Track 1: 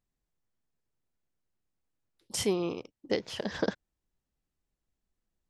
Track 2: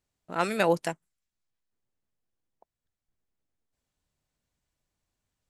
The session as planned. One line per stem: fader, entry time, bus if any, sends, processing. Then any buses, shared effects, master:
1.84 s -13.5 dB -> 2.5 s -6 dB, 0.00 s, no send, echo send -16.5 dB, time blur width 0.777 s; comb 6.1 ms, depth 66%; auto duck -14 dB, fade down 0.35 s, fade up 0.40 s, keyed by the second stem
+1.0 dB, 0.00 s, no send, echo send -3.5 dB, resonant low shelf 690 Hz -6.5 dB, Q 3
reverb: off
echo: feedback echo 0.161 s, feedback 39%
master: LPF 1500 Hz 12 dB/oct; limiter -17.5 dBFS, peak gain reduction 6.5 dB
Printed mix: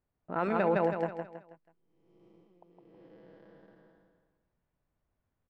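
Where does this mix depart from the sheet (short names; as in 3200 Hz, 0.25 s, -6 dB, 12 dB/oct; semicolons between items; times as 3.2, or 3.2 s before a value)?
stem 1 -13.5 dB -> -23.5 dB; stem 2: missing resonant low shelf 690 Hz -6.5 dB, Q 3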